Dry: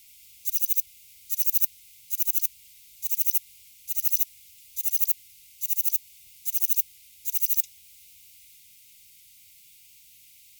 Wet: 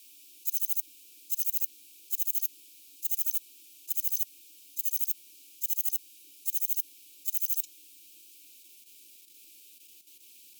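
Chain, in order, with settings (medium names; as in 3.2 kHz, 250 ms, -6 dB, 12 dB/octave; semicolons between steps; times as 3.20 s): frequency shift +240 Hz; level held to a coarse grid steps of 9 dB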